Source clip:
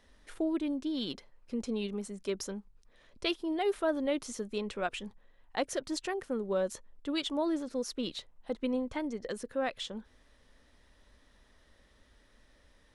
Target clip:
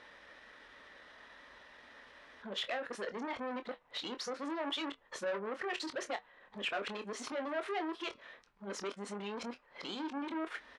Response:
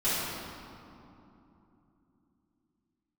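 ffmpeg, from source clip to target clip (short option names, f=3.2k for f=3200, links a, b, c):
-filter_complex "[0:a]areverse,asplit=2[a][b];[b]acompressor=threshold=-43dB:ratio=4,volume=2dB[c];[a][c]amix=inputs=2:normalize=0,alimiter=level_in=2.5dB:limit=-24dB:level=0:latency=1:release=42,volume=-2.5dB,aemphasis=mode=reproduction:type=cd,asoftclip=type=tanh:threshold=-34.5dB,bandpass=f=1.7k:t=q:w=0.66:csg=0,flanger=delay=5.5:depth=3.5:regen=-85:speed=0.17:shape=triangular,atempo=1.2,asplit=2[d][e];[e]adelay=25,volume=-9.5dB[f];[d][f]amix=inputs=2:normalize=0,volume=12dB"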